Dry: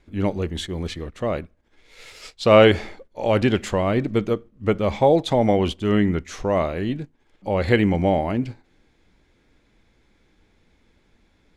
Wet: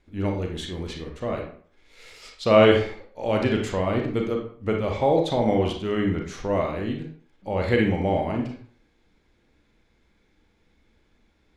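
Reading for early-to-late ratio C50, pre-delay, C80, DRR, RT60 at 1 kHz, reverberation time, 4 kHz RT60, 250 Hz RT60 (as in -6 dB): 5.0 dB, 31 ms, 9.5 dB, 1.5 dB, 0.50 s, 0.50 s, 0.35 s, 0.45 s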